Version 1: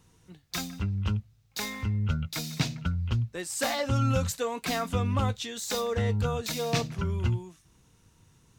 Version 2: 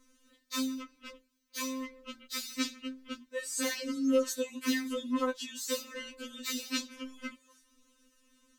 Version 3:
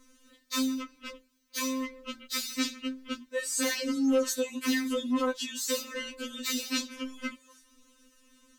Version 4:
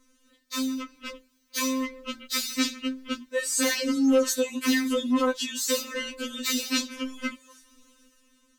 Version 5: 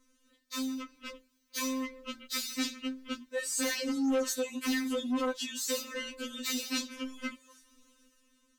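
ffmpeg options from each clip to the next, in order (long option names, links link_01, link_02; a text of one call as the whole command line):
ffmpeg -i in.wav -af "bandreject=frequency=780:width=5.1,afftfilt=real='re*3.46*eq(mod(b,12),0)':imag='im*3.46*eq(mod(b,12),0)':win_size=2048:overlap=0.75" out.wav
ffmpeg -i in.wav -filter_complex "[0:a]asplit=2[link_01][link_02];[link_02]alimiter=level_in=2.5dB:limit=-24dB:level=0:latency=1,volume=-2.5dB,volume=-1dB[link_03];[link_01][link_03]amix=inputs=2:normalize=0,asoftclip=type=tanh:threshold=-17dB" out.wav
ffmpeg -i in.wav -af "dynaudnorm=framelen=160:gausssize=9:maxgain=8dB,volume=-3.5dB" out.wav
ffmpeg -i in.wav -af "asoftclip=type=tanh:threshold=-18dB,volume=-5.5dB" out.wav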